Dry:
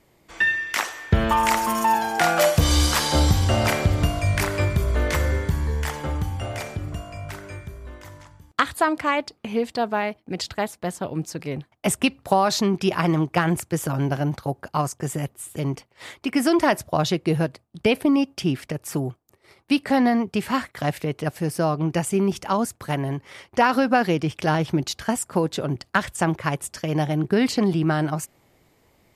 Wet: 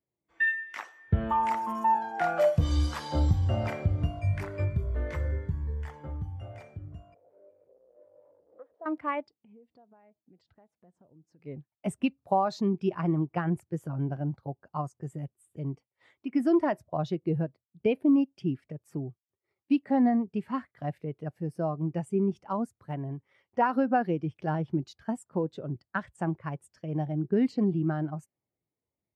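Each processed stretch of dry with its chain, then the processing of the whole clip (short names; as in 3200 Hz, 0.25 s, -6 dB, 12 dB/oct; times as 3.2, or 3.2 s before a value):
7.14–8.86 delta modulation 32 kbps, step -22.5 dBFS + band-pass 520 Hz, Q 5.5
9.41–11.42 high shelf 3500 Hz -9 dB + compressor, threshold -38 dBFS
whole clip: HPF 58 Hz; high shelf 3900 Hz -5.5 dB; spectral expander 1.5:1; gain -7 dB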